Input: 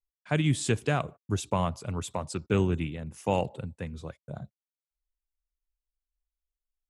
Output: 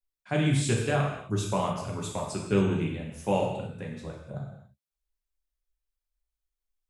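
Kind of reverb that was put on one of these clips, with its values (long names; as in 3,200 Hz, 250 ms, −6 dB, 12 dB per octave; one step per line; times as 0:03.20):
reverb whose tail is shaped and stops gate 310 ms falling, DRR −1.5 dB
level −3 dB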